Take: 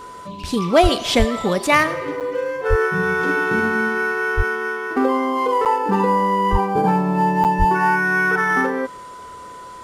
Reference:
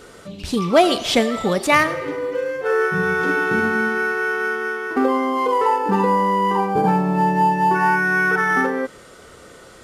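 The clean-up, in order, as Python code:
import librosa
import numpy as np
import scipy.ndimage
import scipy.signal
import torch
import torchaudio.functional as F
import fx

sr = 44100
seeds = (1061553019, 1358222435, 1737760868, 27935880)

y = fx.notch(x, sr, hz=1000.0, q=30.0)
y = fx.fix_deplosive(y, sr, at_s=(0.82, 1.18, 2.69, 4.36, 6.51, 7.58))
y = fx.fix_interpolate(y, sr, at_s=(2.2, 5.65, 7.44), length_ms=8.0)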